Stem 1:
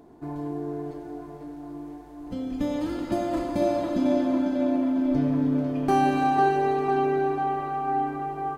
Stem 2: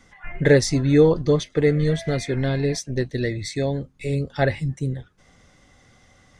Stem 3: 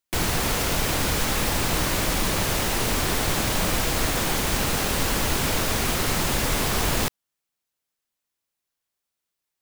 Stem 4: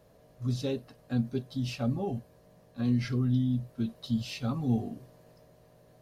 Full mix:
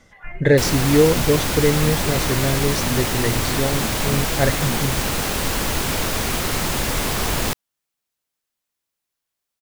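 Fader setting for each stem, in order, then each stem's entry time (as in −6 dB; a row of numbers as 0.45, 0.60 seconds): muted, +0.5 dB, +1.5 dB, −2.5 dB; muted, 0.00 s, 0.45 s, 0.00 s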